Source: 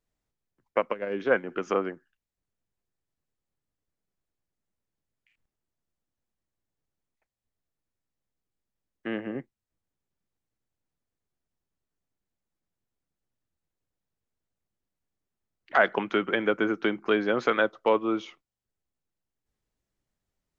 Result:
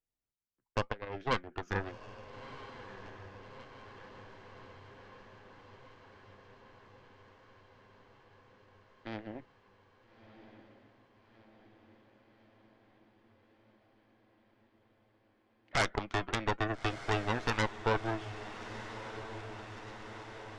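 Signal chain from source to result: added harmonics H 6 -6 dB, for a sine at -7.5 dBFS; flange 0.89 Hz, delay 2.3 ms, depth 1.3 ms, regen -81%; diffused feedback echo 1.314 s, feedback 70%, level -12 dB; gain -8 dB

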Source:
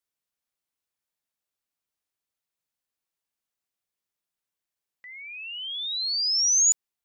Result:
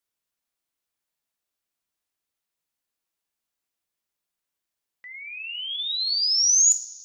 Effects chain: two-slope reverb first 0.46 s, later 2.3 s, from -17 dB, DRR 9 dB; gain +2 dB

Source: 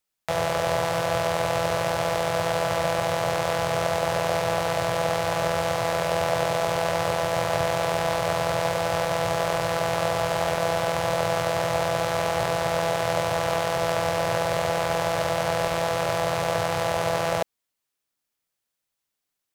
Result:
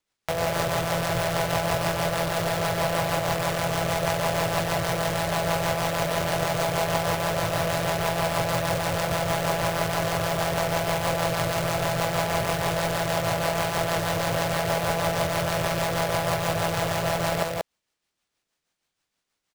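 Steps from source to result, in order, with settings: rotary speaker horn 6.3 Hz; in parallel at -6.5 dB: wrapped overs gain 23.5 dB; on the sum: sample-rate reducer 14000 Hz, jitter 20%; echo 0.185 s -3 dB

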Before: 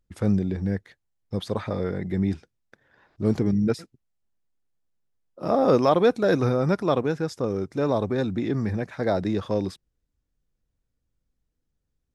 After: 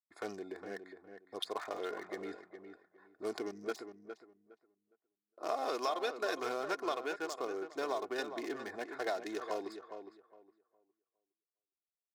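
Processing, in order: Wiener smoothing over 15 samples; gate with hold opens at -50 dBFS; HPF 490 Hz 12 dB/oct; tilt +3 dB/oct; comb 2.8 ms, depth 54%; compressor 5:1, threshold -29 dBFS, peak gain reduction 12 dB; darkening echo 0.411 s, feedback 22%, low-pass 2000 Hz, level -8.5 dB; gain -3.5 dB

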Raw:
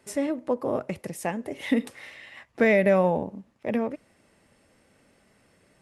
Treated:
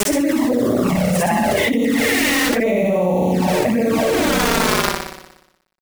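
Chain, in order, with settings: short-time reversal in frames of 0.186 s; low shelf 120 Hz +6.5 dB; in parallel at -1 dB: limiter -19 dBFS, peak gain reduction 8 dB; on the sum: high shelf 8400 Hz -9.5 dB; on a send at -13 dB: reverb RT60 4.1 s, pre-delay 6 ms; on the sum: bit-crush 7-bit; flutter echo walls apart 10.3 m, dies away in 0.94 s; envelope flanger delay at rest 5.4 ms, full sweep at -16.5 dBFS; fast leveller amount 100%; gain -1 dB

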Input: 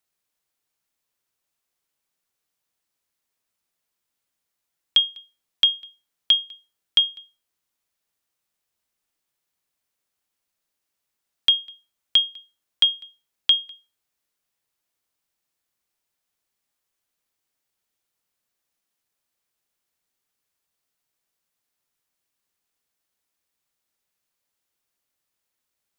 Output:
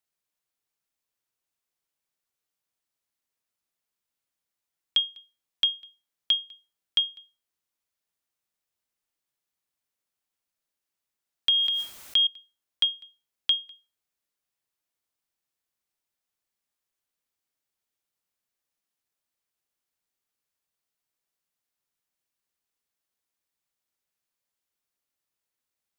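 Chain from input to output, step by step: 11.49–12.27 sustainer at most 26 dB/s; gain -6 dB

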